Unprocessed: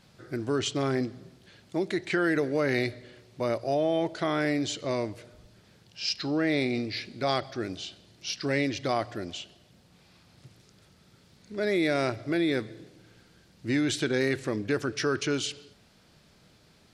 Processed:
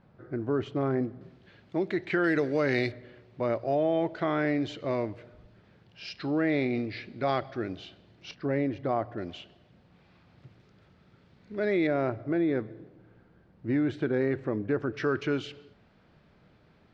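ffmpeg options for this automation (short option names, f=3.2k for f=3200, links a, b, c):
-af "asetnsamples=n=441:p=0,asendcmd='1.21 lowpass f 2600;2.24 lowpass f 4800;2.92 lowpass f 2300;8.31 lowpass f 1200;9.18 lowpass f 2400;11.87 lowpass f 1300;14.94 lowpass f 2100',lowpass=1.3k"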